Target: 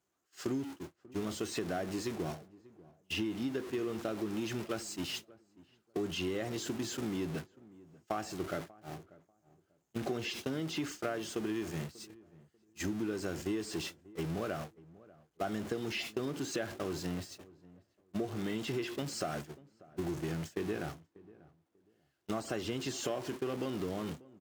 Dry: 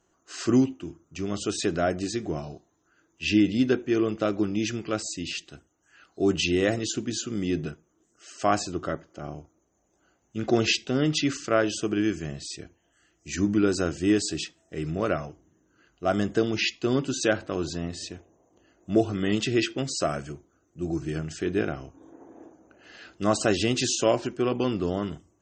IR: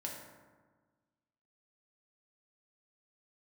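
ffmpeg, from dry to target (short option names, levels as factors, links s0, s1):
-filter_complex "[0:a]aeval=exprs='val(0)+0.5*0.0398*sgn(val(0))':c=same,agate=range=0.00631:threshold=0.0398:ratio=16:detection=peak,acrossover=split=2600[s0][s1];[s1]acompressor=threshold=0.0251:ratio=4:attack=1:release=60[s2];[s0][s2]amix=inputs=2:normalize=0,highpass=64,acompressor=threshold=0.0398:ratio=6,asplit=2[s3][s4];[s4]adelay=615,lowpass=f=920:p=1,volume=0.1,asplit=2[s5][s6];[s6]adelay=615,lowpass=f=920:p=1,volume=0.23[s7];[s3][s5][s7]amix=inputs=3:normalize=0,asetrate=45938,aresample=44100,volume=0.562"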